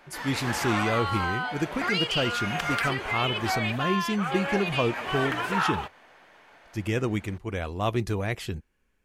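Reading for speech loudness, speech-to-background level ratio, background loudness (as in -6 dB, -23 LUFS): -30.0 LUFS, -1.0 dB, -29.0 LUFS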